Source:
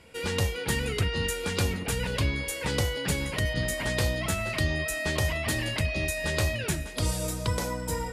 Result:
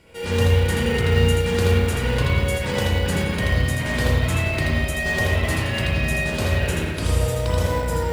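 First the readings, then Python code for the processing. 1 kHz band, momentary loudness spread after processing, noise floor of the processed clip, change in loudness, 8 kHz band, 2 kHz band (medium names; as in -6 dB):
+7.0 dB, 4 LU, -26 dBFS, +7.5 dB, 0.0 dB, +6.5 dB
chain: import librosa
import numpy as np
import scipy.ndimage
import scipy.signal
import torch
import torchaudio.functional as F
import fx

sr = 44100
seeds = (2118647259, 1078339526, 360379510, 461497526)

p1 = x + 10.0 ** (-4.5 / 20.0) * np.pad(x, (int(81 * sr / 1000.0), 0))[:len(x)]
p2 = fx.rev_spring(p1, sr, rt60_s=1.5, pass_ms=(34, 56), chirp_ms=60, drr_db=-6.0)
p3 = fx.sample_hold(p2, sr, seeds[0], rate_hz=1300.0, jitter_pct=0)
p4 = p2 + (p3 * 10.0 ** (-10.5 / 20.0))
y = p4 * 10.0 ** (-1.5 / 20.0)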